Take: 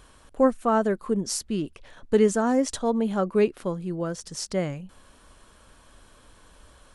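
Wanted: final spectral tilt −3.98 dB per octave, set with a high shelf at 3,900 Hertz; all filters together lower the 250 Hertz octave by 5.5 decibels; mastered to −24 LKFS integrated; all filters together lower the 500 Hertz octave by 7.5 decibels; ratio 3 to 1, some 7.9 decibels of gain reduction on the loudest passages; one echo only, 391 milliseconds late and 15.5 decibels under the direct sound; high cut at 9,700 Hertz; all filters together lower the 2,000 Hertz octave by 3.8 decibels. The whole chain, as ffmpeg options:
ffmpeg -i in.wav -af "lowpass=9700,equalizer=frequency=250:width_type=o:gain=-5,equalizer=frequency=500:width_type=o:gain=-7.5,equalizer=frequency=2000:width_type=o:gain=-6,highshelf=frequency=3900:gain=6,acompressor=threshold=-32dB:ratio=3,aecho=1:1:391:0.168,volume=11.5dB" out.wav

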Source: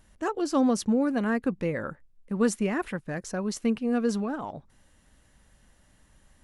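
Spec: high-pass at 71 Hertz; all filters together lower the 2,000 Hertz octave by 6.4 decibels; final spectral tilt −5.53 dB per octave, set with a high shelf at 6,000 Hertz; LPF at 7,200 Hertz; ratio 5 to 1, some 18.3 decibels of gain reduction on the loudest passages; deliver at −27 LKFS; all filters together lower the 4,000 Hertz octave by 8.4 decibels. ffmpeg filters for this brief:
ffmpeg -i in.wav -af "highpass=71,lowpass=7200,equalizer=frequency=2000:width_type=o:gain=-7,equalizer=frequency=4000:width_type=o:gain=-7,highshelf=frequency=6000:gain=-4.5,acompressor=threshold=-41dB:ratio=5,volume=16.5dB" out.wav

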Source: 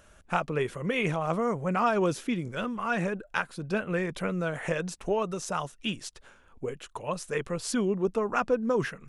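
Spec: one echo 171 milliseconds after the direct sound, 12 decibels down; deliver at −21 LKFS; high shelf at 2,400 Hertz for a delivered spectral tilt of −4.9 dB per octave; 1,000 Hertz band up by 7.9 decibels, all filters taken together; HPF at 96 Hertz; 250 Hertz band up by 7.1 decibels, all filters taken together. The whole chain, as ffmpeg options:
ffmpeg -i in.wav -af "highpass=96,equalizer=frequency=250:width_type=o:gain=9,equalizer=frequency=1000:width_type=o:gain=8,highshelf=frequency=2400:gain=8.5,aecho=1:1:171:0.251,volume=3dB" out.wav

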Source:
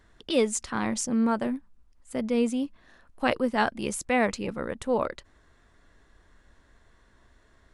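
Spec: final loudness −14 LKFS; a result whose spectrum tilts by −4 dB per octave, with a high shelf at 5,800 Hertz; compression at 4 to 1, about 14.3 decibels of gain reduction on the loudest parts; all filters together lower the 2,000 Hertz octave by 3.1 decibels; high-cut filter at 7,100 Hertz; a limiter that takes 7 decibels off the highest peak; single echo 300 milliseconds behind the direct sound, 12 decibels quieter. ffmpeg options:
ffmpeg -i in.wav -af "lowpass=7100,equalizer=frequency=2000:width_type=o:gain=-4.5,highshelf=frequency=5800:gain=5.5,acompressor=threshold=-37dB:ratio=4,alimiter=level_in=6dB:limit=-24dB:level=0:latency=1,volume=-6dB,aecho=1:1:300:0.251,volume=27dB" out.wav

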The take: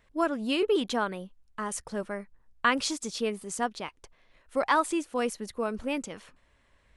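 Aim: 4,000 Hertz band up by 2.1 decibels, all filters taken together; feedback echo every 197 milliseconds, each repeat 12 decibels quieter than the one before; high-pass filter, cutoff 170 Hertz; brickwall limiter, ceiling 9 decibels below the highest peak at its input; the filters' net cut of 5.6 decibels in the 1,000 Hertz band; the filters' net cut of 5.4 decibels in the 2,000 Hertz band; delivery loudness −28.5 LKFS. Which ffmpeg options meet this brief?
ffmpeg -i in.wav -af "highpass=170,equalizer=frequency=1000:width_type=o:gain=-5.5,equalizer=frequency=2000:width_type=o:gain=-6.5,equalizer=frequency=4000:width_type=o:gain=5.5,alimiter=limit=-23.5dB:level=0:latency=1,aecho=1:1:197|394|591:0.251|0.0628|0.0157,volume=6dB" out.wav

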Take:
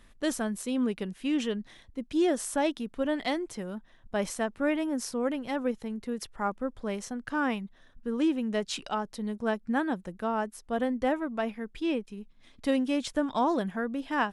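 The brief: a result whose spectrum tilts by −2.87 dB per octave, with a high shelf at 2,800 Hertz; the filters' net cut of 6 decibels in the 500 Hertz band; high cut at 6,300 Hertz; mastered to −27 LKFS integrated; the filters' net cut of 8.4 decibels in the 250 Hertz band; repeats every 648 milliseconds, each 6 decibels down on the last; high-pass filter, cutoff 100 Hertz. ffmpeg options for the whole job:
ffmpeg -i in.wav -af "highpass=100,lowpass=6300,equalizer=frequency=250:width_type=o:gain=-8.5,equalizer=frequency=500:width_type=o:gain=-5,highshelf=frequency=2800:gain=-8,aecho=1:1:648|1296|1944|2592|3240|3888:0.501|0.251|0.125|0.0626|0.0313|0.0157,volume=9dB" out.wav

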